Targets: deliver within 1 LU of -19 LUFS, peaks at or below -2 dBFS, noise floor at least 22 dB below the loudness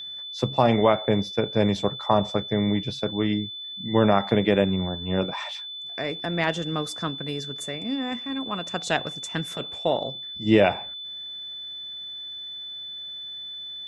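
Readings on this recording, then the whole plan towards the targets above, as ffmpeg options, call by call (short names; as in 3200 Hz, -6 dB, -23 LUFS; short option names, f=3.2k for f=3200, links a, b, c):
steady tone 3500 Hz; tone level -34 dBFS; loudness -26.0 LUFS; peak -4.5 dBFS; loudness target -19.0 LUFS
-> -af "bandreject=f=3.5k:w=30"
-af "volume=7dB,alimiter=limit=-2dB:level=0:latency=1"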